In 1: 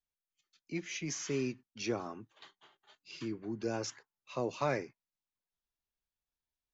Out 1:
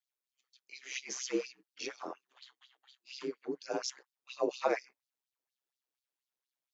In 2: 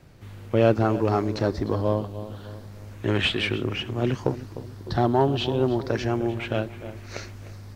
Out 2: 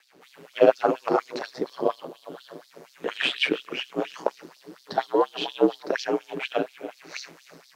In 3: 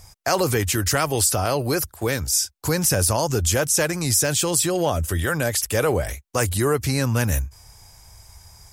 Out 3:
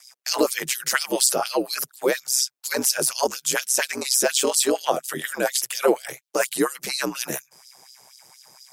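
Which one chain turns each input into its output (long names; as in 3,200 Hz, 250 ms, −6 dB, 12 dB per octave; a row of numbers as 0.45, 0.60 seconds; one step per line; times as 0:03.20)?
ring modulation 65 Hz
auto-filter high-pass sine 4.2 Hz 310–4,600 Hz
level +1.5 dB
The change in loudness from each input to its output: 0.0, −1.0, −1.5 LU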